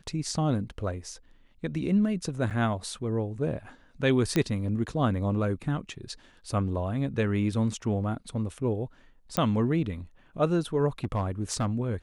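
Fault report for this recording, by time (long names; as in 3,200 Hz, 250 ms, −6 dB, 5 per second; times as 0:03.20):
0:02.50–0:02.51: drop-out 7.5 ms
0:04.36: click −12 dBFS
0:09.37: click −10 dBFS
0:11.04–0:11.69: clipping −22.5 dBFS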